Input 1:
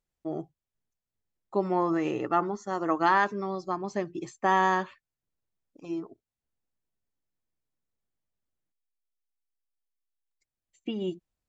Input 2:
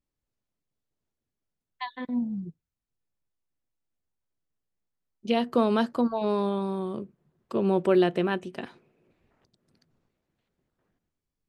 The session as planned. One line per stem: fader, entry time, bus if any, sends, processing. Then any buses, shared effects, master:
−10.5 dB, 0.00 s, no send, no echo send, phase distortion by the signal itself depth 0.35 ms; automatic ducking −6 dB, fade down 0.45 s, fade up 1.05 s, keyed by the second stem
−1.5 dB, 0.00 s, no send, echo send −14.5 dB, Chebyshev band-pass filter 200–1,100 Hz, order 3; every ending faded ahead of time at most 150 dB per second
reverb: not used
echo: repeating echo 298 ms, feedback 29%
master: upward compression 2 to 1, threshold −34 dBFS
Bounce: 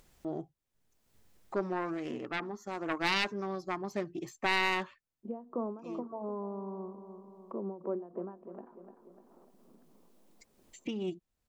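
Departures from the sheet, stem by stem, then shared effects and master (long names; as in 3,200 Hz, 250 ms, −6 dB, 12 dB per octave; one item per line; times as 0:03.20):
stem 1 −10.5 dB → −4.0 dB
stem 2 −1.5 dB → −12.0 dB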